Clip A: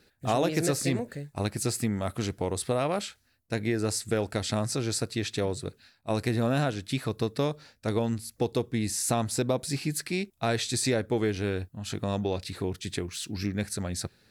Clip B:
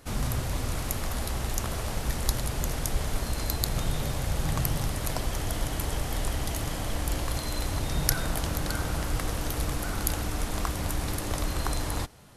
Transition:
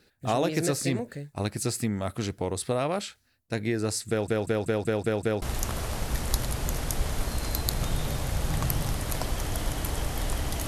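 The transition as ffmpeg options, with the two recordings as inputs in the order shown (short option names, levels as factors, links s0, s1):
-filter_complex "[0:a]apad=whole_dur=10.67,atrim=end=10.67,asplit=7[s0][s1][s2][s3][s4][s5][s6];[s0]atrim=end=4.282[s7];[s1]atrim=start=4.088:end=4.282[s8];[s2]atrim=start=4.088:end=4.282[s9];[s3]atrim=start=4.088:end=4.282[s10];[s4]atrim=start=4.088:end=4.282[s11];[s5]atrim=start=4.088:end=4.282[s12];[s6]atrim=start=4.088:end=4.282[s13];[1:a]atrim=start=1.368:end=6.62[s14];[s7][s8]acrossfade=d=0.004:c1=hsin:c2=hsin[s15];[s15][s9]acrossfade=d=0.004:c1=hsin:c2=hsin[s16];[s16][s10]acrossfade=d=0.004:c1=hsin:c2=hsin[s17];[s17][s11]acrossfade=d=0.004:c1=hsin:c2=hsin[s18];[s18][s12]acrossfade=d=0.004:c1=hsin:c2=hsin[s19];[s19][s13]acrossfade=d=0.004:c1=hsin:c2=hsin[s20];[s20][s14]acrossfade=d=0.004:c1=hsin:c2=hsin"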